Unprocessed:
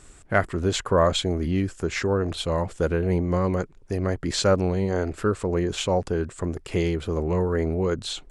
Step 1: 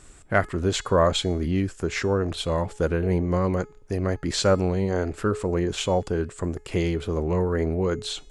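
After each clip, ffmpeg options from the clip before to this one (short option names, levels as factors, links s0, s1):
-af "bandreject=f=423.3:t=h:w=4,bandreject=f=846.6:t=h:w=4,bandreject=f=1269.9:t=h:w=4,bandreject=f=1693.2:t=h:w=4,bandreject=f=2116.5:t=h:w=4,bandreject=f=2539.8:t=h:w=4,bandreject=f=2963.1:t=h:w=4,bandreject=f=3386.4:t=h:w=4,bandreject=f=3809.7:t=h:w=4,bandreject=f=4233:t=h:w=4,bandreject=f=4656.3:t=h:w=4,bandreject=f=5079.6:t=h:w=4,bandreject=f=5502.9:t=h:w=4,bandreject=f=5926.2:t=h:w=4,bandreject=f=6349.5:t=h:w=4,bandreject=f=6772.8:t=h:w=4,bandreject=f=7196.1:t=h:w=4,bandreject=f=7619.4:t=h:w=4,bandreject=f=8042.7:t=h:w=4,bandreject=f=8466:t=h:w=4,bandreject=f=8889.3:t=h:w=4,bandreject=f=9312.6:t=h:w=4,bandreject=f=9735.9:t=h:w=4,bandreject=f=10159.2:t=h:w=4,bandreject=f=10582.5:t=h:w=4,bandreject=f=11005.8:t=h:w=4,bandreject=f=11429.1:t=h:w=4,bandreject=f=11852.4:t=h:w=4,bandreject=f=12275.7:t=h:w=4,bandreject=f=12699:t=h:w=4,bandreject=f=13122.3:t=h:w=4,bandreject=f=13545.6:t=h:w=4,bandreject=f=13968.9:t=h:w=4,bandreject=f=14392.2:t=h:w=4,bandreject=f=14815.5:t=h:w=4,bandreject=f=15238.8:t=h:w=4,bandreject=f=15662.1:t=h:w=4"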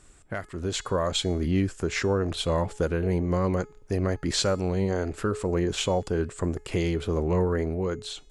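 -filter_complex "[0:a]acrossover=split=3200[s0][s1];[s0]alimiter=limit=0.158:level=0:latency=1:release=382[s2];[s2][s1]amix=inputs=2:normalize=0,dynaudnorm=f=140:g=11:m=2,volume=0.531"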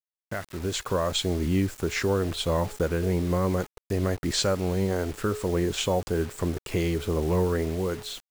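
-af "acrusher=bits=6:mix=0:aa=0.000001"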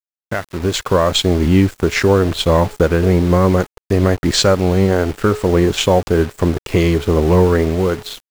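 -filter_complex "[0:a]asplit=2[s0][s1];[s1]adynamicsmooth=sensitivity=6:basefreq=5600,volume=1.12[s2];[s0][s2]amix=inputs=2:normalize=0,aeval=exprs='sgn(val(0))*max(abs(val(0))-0.0158,0)':c=same,volume=2.11"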